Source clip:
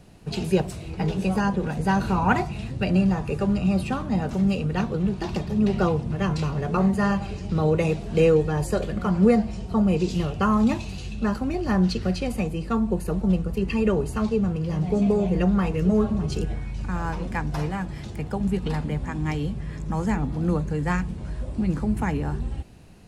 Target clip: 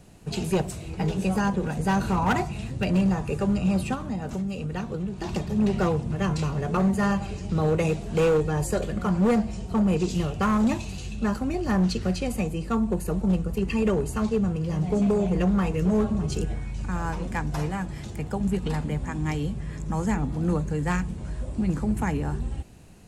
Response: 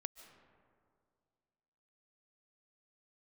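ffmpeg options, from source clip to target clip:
-filter_complex "[0:a]asplit=3[a][b][c];[a]afade=t=out:st=3.94:d=0.02[d];[b]acompressor=threshold=-26dB:ratio=6,afade=t=in:st=3.94:d=0.02,afade=t=out:st=5.25:d=0.02[e];[c]afade=t=in:st=5.25:d=0.02[f];[d][e][f]amix=inputs=3:normalize=0,asoftclip=type=hard:threshold=-16dB,aexciter=amount=2:drive=3.9:freq=6.5k[g];[1:a]atrim=start_sample=2205,atrim=end_sample=3969,asetrate=24255,aresample=44100[h];[g][h]afir=irnorm=-1:irlink=0"

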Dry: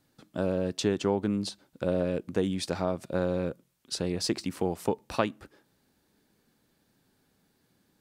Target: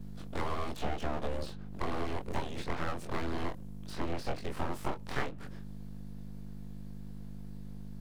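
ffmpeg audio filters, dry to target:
-filter_complex "[0:a]afftfilt=real='re':imag='-im':win_size=2048:overlap=0.75,acrossover=split=200|3200[a][b][c];[c]acompressor=threshold=-59dB:ratio=8[d];[a][b][d]amix=inputs=3:normalize=0,aeval=exprs='val(0)+0.00398*(sin(2*PI*50*n/s)+sin(2*PI*2*50*n/s)/2+sin(2*PI*3*50*n/s)/3+sin(2*PI*4*50*n/s)/4+sin(2*PI*5*50*n/s)/5)':c=same,acrossover=split=85|2200[e][f][g];[e]acompressor=threshold=-51dB:ratio=4[h];[f]acompressor=threshold=-38dB:ratio=4[i];[g]acompressor=threshold=-57dB:ratio=4[j];[h][i][j]amix=inputs=3:normalize=0,aeval=exprs='abs(val(0))':c=same,volume=8.5dB"

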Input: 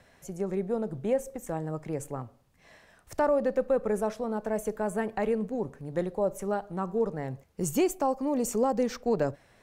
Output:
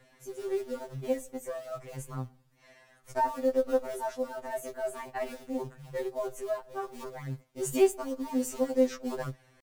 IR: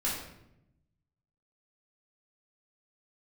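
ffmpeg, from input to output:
-filter_complex "[0:a]adynamicequalizer=threshold=0.00447:dfrequency=190:dqfactor=2.2:tfrequency=190:tqfactor=2.2:attack=5:release=100:ratio=0.375:range=3:mode=cutabove:tftype=bell,asetrate=45392,aresample=44100,atempo=0.971532,acrossover=split=480[a][b];[a]acrusher=bits=4:mode=log:mix=0:aa=0.000001[c];[c][b]amix=inputs=2:normalize=0,afftfilt=real='re*2.45*eq(mod(b,6),0)':imag='im*2.45*eq(mod(b,6),0)':win_size=2048:overlap=0.75"

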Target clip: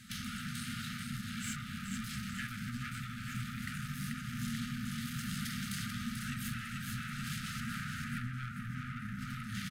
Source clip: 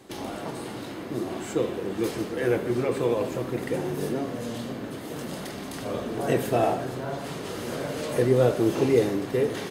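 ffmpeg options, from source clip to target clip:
-filter_complex "[0:a]asettb=1/sr,asplit=3[a][b][c];[a]atrim=end=7.604[d];[b]atrim=start=7.6:end=9.19,asetpts=PTS-STARTPTS,afade=t=in:d=0.004:c=qsin,afade=t=out:st=1.586:d=0.004:c=qsin,highshelf=f=2.4k:t=q:w=1.5:g=-11.5[e];[c]atrim=start=9.186[f];[d][e]acrossfade=d=0.004:c1=hsin:c2=qsin[g];[g][f]acrossfade=d=0.004:c1=qsin:c2=hsin,aecho=1:1:438|876|1314|1752|2190|2628|3066:0.562|0.298|0.158|0.0837|0.0444|0.0235|0.0125,acompressor=threshold=-26dB:ratio=6,asoftclip=type=tanh:threshold=-31.5dB,afftfilt=real='re*(1-between(b*sr/4096,250,1200))':imag='im*(1-between(b*sr/4096,250,1200))':win_size=4096:overlap=0.75,volume=1.5dB"

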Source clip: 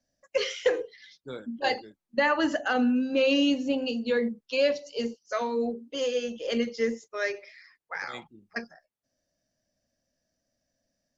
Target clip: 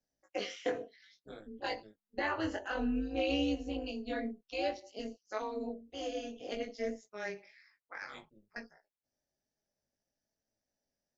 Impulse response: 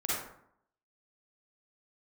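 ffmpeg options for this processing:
-af "tremolo=f=210:d=0.889,flanger=delay=18:depth=4:speed=0.58,volume=-3.5dB"

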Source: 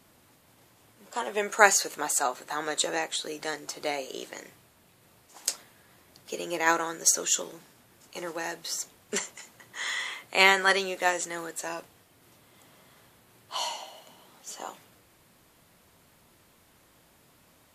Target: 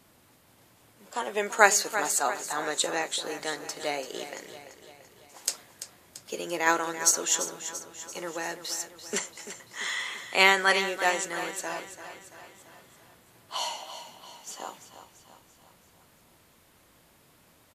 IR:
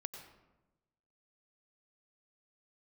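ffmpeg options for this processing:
-af "aecho=1:1:339|678|1017|1356|1695|2034:0.266|0.144|0.0776|0.0419|0.0226|0.0122"

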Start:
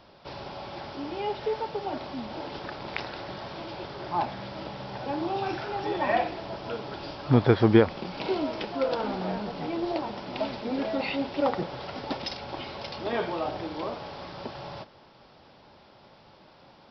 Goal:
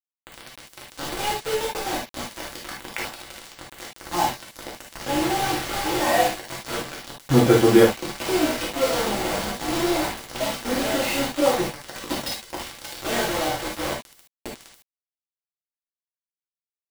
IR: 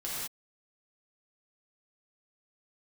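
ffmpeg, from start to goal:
-filter_complex "[0:a]asettb=1/sr,asplit=3[a][b][c];[a]atrim=end=6.724[d];[b]atrim=start=6.72:end=8.85,asetpts=PTS-STARTPTS,afade=t=in:d=0.004:c=qsin,afade=t=out:st=2.126:d=0.004:c=qsin,acrossover=split=180|3000[e][f][g];[e]acompressor=threshold=-27dB:ratio=6[h];[h][f][g]amix=inputs=3:normalize=0[i];[c]atrim=start=8.846[j];[d][i]acrossfade=d=0.004:c1=hsin:c2=qsin[k];[k][j]acrossfade=d=0.004:c1=qsin:c2=hsin,acrusher=bits=4:mix=0:aa=0.000001[l];[1:a]atrim=start_sample=2205,atrim=end_sample=3528[m];[l][m]afir=irnorm=-1:irlink=0,volume=4.5dB"

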